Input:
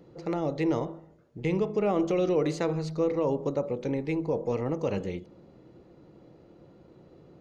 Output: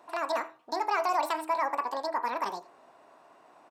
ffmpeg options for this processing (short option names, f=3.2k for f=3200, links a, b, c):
-af "highpass=f=99:p=1,bass=f=250:g=-10,treble=f=4k:g=-3,aecho=1:1:172:0.075,asetrate=88200,aresample=44100"